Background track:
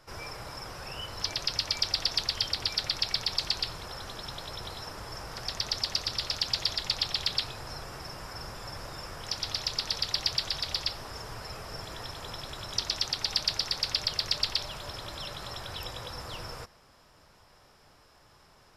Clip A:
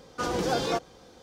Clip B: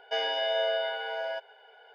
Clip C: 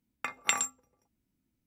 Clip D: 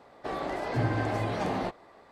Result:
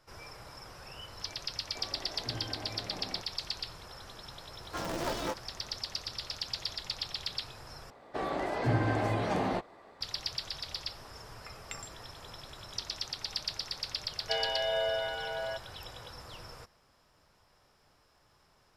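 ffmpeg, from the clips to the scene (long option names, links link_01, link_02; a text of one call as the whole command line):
ffmpeg -i bed.wav -i cue0.wav -i cue1.wav -i cue2.wav -i cue3.wav -filter_complex "[4:a]asplit=2[link_01][link_02];[0:a]volume=-7.5dB[link_03];[1:a]aeval=exprs='val(0)*sgn(sin(2*PI*170*n/s))':channel_layout=same[link_04];[link_03]asplit=2[link_05][link_06];[link_05]atrim=end=7.904[link_07];[link_02]atrim=end=2.11,asetpts=PTS-STARTPTS,volume=-0.5dB[link_08];[link_06]atrim=start=10.006[link_09];[link_01]atrim=end=2.11,asetpts=PTS-STARTPTS,volume=-14dB,afade=type=in:duration=0.004:curve=hsin,afade=type=out:start_time=2.106:duration=0.004:curve=hsin,adelay=1510[link_10];[link_04]atrim=end=1.22,asetpts=PTS-STARTPTS,volume=-7.5dB,afade=type=in:duration=0.004:curve=hsin,afade=type=out:start_time=1.216:duration=0.004:curve=hsin,adelay=4550[link_11];[3:a]atrim=end=1.66,asetpts=PTS-STARTPTS,volume=-16.5dB,afade=type=in:duration=0.004:curve=hsin,afade=type=out:start_time=1.656:duration=0.004:curve=hsin,adelay=494802S[link_12];[2:a]atrim=end=1.94,asetpts=PTS-STARTPTS,volume=-3dB,afade=type=in:duration=0.004:curve=hsin,afade=type=out:start_time=1.936:duration=0.004:curve=hsin,adelay=14180[link_13];[link_07][link_08]acrossfade=duration=0.004:curve1=hsin:curve2=hsin[link_14];[link_14][link_09]acrossfade=duration=0.004:curve1=hsin:curve2=hsin[link_15];[link_15][link_10][link_11][link_12][link_13]amix=inputs=5:normalize=0" out.wav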